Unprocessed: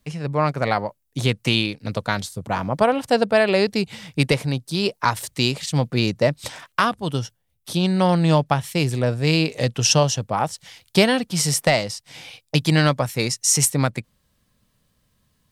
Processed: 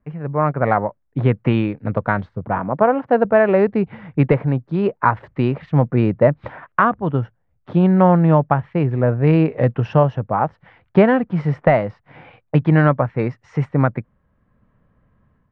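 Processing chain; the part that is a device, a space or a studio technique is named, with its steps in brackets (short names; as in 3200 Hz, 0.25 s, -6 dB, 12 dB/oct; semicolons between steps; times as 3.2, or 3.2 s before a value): 2.59–3.25 HPF 140 Hz 12 dB/oct; action camera in a waterproof case (LPF 1700 Hz 24 dB/oct; AGC gain up to 8 dB; AAC 128 kbps 44100 Hz)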